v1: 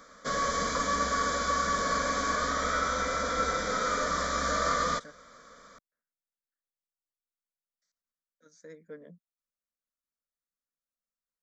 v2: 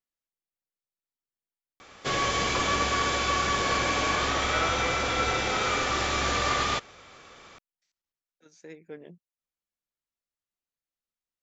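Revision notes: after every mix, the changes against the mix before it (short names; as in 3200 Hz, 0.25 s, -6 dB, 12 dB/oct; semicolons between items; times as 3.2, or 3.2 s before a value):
background: entry +1.80 s; master: remove fixed phaser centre 540 Hz, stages 8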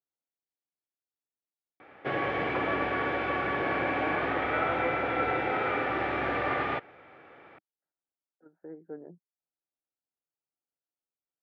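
speech: add steep low-pass 1500 Hz 48 dB/oct; master: add speaker cabinet 130–2200 Hz, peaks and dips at 210 Hz -6 dB, 310 Hz +4 dB, 800 Hz +4 dB, 1100 Hz -8 dB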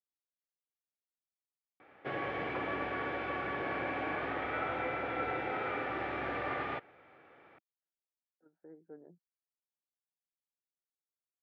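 speech -9.5 dB; background -7.0 dB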